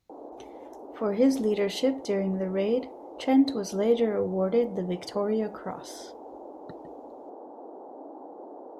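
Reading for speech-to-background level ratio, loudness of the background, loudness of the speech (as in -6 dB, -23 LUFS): 17.5 dB, -44.5 LUFS, -27.0 LUFS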